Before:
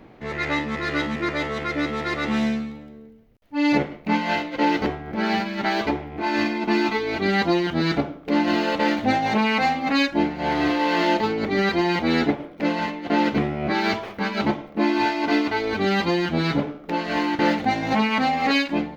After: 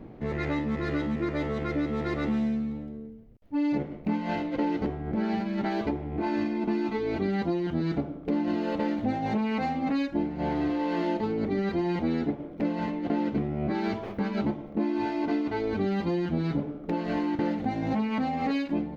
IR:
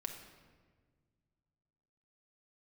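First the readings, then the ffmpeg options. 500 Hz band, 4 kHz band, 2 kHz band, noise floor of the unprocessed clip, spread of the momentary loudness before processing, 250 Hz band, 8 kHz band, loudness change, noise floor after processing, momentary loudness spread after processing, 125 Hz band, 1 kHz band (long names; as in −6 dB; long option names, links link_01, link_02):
−6.0 dB, −16.0 dB, −14.0 dB, −44 dBFS, 6 LU, −4.0 dB, can't be measured, −6.5 dB, −43 dBFS, 3 LU, −2.5 dB, −10.0 dB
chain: -af "tiltshelf=frequency=710:gain=7.5,acompressor=threshold=-24dB:ratio=4,volume=-2dB"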